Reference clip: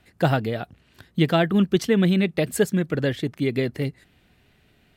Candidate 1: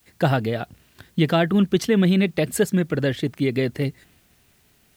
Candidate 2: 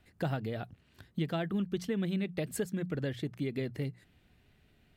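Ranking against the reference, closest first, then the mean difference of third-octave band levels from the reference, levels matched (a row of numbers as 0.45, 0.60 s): 1, 2; 1.0, 2.0 dB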